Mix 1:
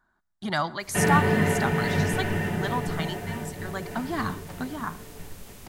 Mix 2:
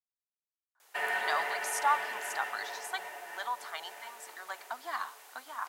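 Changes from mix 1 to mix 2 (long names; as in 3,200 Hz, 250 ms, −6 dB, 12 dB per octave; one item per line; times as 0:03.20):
speech: entry +0.75 s
master: add four-pole ladder high-pass 610 Hz, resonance 25%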